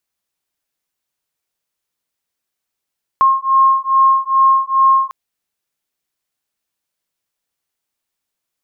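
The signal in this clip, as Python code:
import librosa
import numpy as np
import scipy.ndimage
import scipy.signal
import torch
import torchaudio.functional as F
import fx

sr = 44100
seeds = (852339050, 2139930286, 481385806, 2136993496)

y = fx.two_tone_beats(sr, length_s=1.9, hz=1070.0, beat_hz=2.4, level_db=-12.5)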